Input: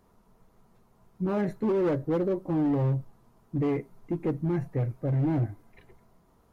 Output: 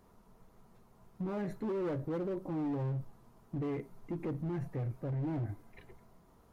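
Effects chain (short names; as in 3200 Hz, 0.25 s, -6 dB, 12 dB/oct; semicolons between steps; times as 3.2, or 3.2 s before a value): limiter -30 dBFS, peak gain reduction 10 dB; hard clip -32 dBFS, distortion -22 dB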